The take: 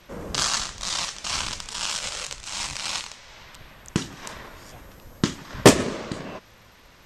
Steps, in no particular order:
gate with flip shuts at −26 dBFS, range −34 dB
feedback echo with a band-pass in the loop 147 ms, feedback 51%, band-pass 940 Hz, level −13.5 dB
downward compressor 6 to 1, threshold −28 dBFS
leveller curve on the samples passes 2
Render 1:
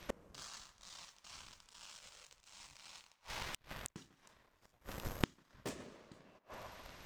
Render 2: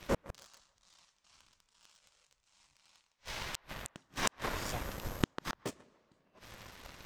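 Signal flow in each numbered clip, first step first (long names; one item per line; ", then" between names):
leveller curve on the samples, then feedback echo with a band-pass in the loop, then gate with flip, then downward compressor
gate with flip, then feedback echo with a band-pass in the loop, then downward compressor, then leveller curve on the samples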